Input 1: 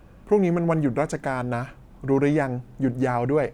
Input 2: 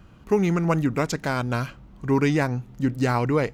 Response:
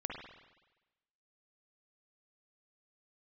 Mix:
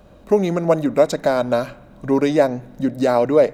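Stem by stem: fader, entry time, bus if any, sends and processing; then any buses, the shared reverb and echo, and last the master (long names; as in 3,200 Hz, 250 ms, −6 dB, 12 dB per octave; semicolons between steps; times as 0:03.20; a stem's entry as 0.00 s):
−4.5 dB, 0.00 s, send −4 dB, downward compressor, threshold −26 dBFS, peak gain reduction 11.5 dB
+2.5 dB, 0.00 s, polarity flipped, no send, high-pass filter 210 Hz 24 dB per octave; parametric band 1,900 Hz −7.5 dB 2.1 octaves; hollow resonant body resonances 590/3,800 Hz, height 17 dB, ringing for 25 ms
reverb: on, RT60 1.1 s, pre-delay 47 ms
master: no processing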